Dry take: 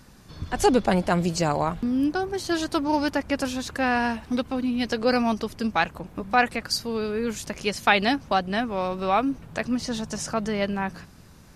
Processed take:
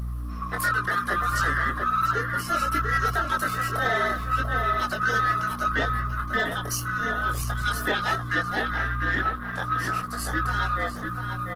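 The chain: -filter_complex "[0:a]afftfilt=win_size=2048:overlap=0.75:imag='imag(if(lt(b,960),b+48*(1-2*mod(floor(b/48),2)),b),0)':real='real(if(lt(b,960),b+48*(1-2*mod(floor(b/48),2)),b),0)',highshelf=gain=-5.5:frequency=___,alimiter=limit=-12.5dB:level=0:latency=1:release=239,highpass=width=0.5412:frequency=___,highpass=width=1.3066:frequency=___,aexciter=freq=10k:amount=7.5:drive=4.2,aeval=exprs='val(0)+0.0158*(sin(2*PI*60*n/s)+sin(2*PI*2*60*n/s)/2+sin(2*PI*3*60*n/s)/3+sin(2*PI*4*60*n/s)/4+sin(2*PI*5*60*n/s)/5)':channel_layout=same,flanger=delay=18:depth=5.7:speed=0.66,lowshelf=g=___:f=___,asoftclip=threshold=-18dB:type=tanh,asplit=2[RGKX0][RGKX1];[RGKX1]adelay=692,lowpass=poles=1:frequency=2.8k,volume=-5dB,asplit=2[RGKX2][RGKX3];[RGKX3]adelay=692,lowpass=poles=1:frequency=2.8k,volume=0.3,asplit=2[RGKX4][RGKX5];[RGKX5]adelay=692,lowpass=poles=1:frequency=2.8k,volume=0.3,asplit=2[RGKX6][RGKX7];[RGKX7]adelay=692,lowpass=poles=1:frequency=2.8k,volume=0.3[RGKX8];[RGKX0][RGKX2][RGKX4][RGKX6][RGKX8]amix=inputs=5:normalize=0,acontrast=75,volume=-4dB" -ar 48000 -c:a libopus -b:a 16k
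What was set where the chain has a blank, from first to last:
3.2k, 280, 280, 6, 410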